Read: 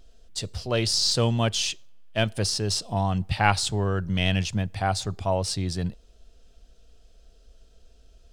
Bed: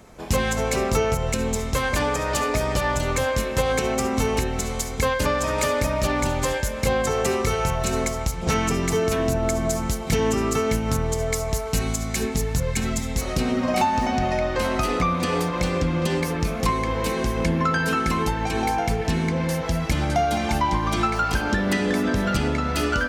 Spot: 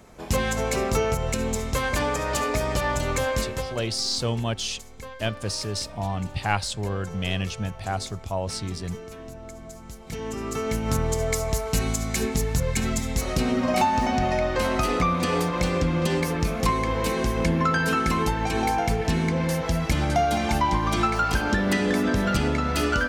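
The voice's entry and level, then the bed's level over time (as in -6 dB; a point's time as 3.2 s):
3.05 s, -3.5 dB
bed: 3.42 s -2 dB
3.87 s -18 dB
9.79 s -18 dB
10.96 s -0.5 dB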